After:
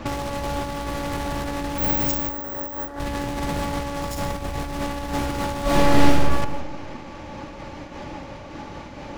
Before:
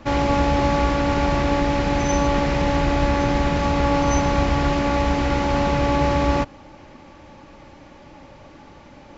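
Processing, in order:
stylus tracing distortion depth 0.47 ms
0:02.31–0:02.99: gain on a spectral selection 220–2,000 Hz +10 dB
0:04.21–0:05.08: low-shelf EQ 61 Hz +4 dB
compressor whose output falls as the input rises −27 dBFS, ratio −1
reverb whose tail is shaped and stops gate 190 ms flat, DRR 11.5 dB
0:01.78–0:02.88: bad sample-rate conversion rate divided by 2×, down filtered, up zero stuff
0:05.62–0:06.12: thrown reverb, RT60 1.4 s, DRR −9.5 dB
amplitude modulation by smooth noise, depth 55%
level +2 dB

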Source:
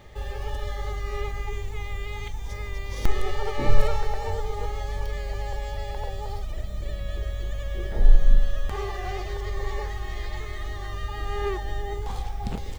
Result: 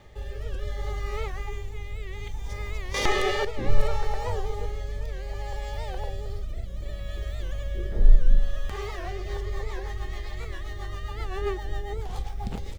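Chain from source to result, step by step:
rotating-speaker cabinet horn 0.65 Hz, later 7.5 Hz, at 0:08.91
0:02.94–0:03.45: mid-hump overdrive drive 22 dB, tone 5,300 Hz, clips at −9.5 dBFS
wow of a warped record 78 rpm, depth 160 cents

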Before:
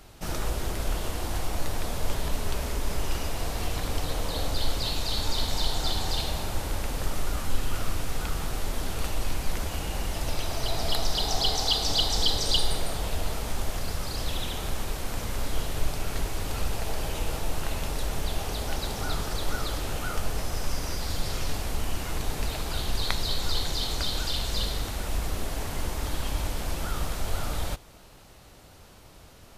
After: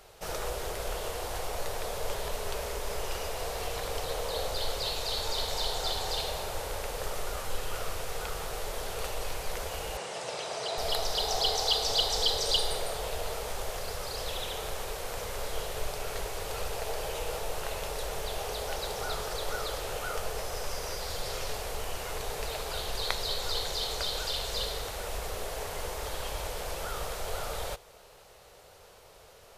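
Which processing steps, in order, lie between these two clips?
0:09.97–0:10.78: elliptic band-pass filter 140–8,700 Hz, stop band 40 dB
low shelf with overshoot 360 Hz −7.5 dB, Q 3
level −2 dB

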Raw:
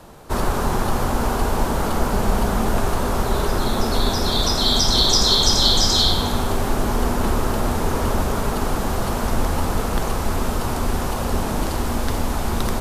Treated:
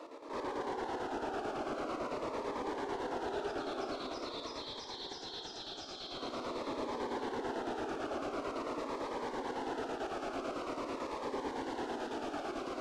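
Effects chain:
elliptic high-pass filter 280 Hz, stop band 40 dB
high-shelf EQ 3,300 Hz +11 dB
brickwall limiter −21 dBFS, peak gain reduction 21.5 dB
square-wave tremolo 9 Hz, depth 60%, duty 60%
hard clipping −31 dBFS, distortion −9 dB
head-to-tape spacing loss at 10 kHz 35 dB
on a send: echo with a time of its own for lows and highs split 820 Hz, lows 123 ms, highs 549 ms, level −9.5 dB
on the sum: phaser whose notches keep moving one way falling 0.46 Hz
level +2.5 dB

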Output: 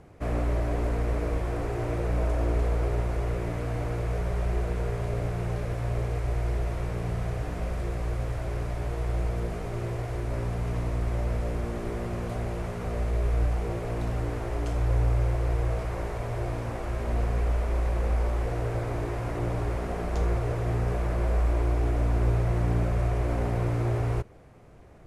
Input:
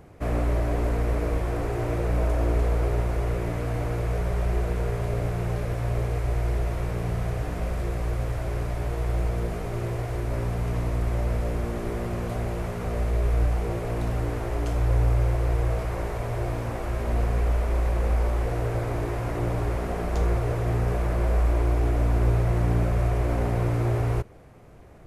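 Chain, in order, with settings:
low-pass filter 11,000 Hz 12 dB per octave
level −2.5 dB

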